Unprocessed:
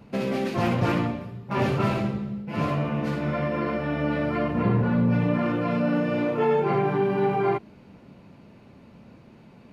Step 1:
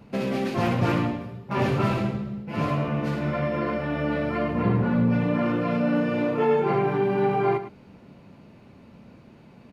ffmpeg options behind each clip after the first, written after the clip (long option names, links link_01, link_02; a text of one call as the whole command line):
ffmpeg -i in.wav -af "aecho=1:1:106:0.251" out.wav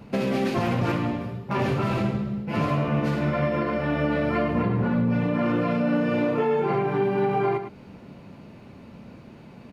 ffmpeg -i in.wav -af "alimiter=limit=-19.5dB:level=0:latency=1:release=306,volume=4.5dB" out.wav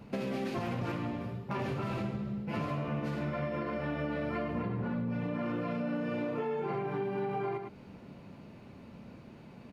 ffmpeg -i in.wav -af "acompressor=threshold=-27dB:ratio=3,volume=-5.5dB" out.wav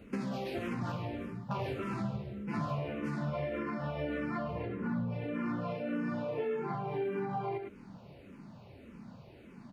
ffmpeg -i in.wav -filter_complex "[0:a]asplit=2[link_01][link_02];[link_02]afreqshift=-1.7[link_03];[link_01][link_03]amix=inputs=2:normalize=1,volume=1.5dB" out.wav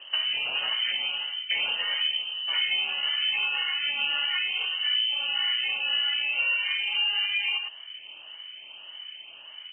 ffmpeg -i in.wav -af "lowpass=frequency=2700:width_type=q:width=0.5098,lowpass=frequency=2700:width_type=q:width=0.6013,lowpass=frequency=2700:width_type=q:width=0.9,lowpass=frequency=2700:width_type=q:width=2.563,afreqshift=-3200,volume=8dB" out.wav